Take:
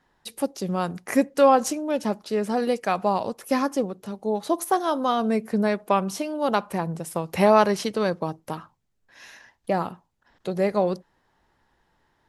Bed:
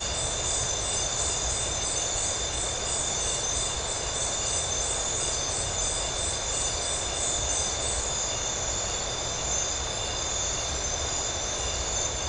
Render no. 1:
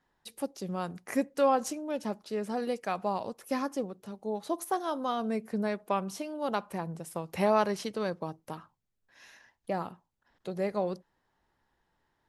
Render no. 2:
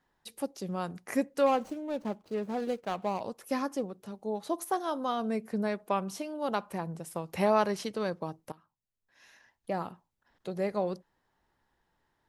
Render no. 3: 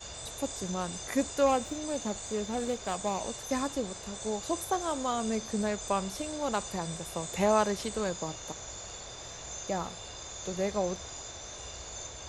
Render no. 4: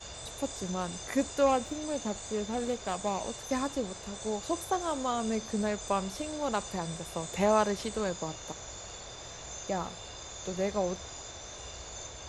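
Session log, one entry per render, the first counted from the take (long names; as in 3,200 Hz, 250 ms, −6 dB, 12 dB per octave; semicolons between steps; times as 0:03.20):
level −8.5 dB
0:01.46–0:03.21: running median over 25 samples; 0:08.52–0:09.83: fade in, from −18.5 dB
mix in bed −13.5 dB
high-shelf EQ 10,000 Hz −7.5 dB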